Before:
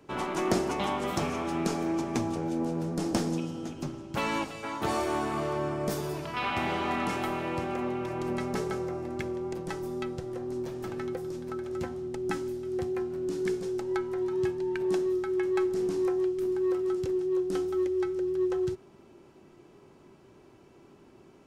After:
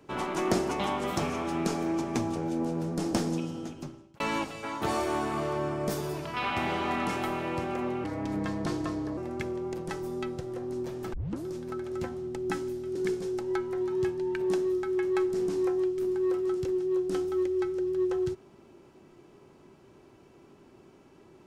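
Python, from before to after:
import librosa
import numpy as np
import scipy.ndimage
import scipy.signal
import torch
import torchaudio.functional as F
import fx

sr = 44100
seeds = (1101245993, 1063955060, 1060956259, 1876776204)

y = fx.edit(x, sr, fx.fade_out_span(start_s=3.58, length_s=0.62),
    fx.speed_span(start_s=8.04, length_s=0.93, speed=0.82),
    fx.tape_start(start_s=10.93, length_s=0.32),
    fx.cut(start_s=12.75, length_s=0.61), tone=tone)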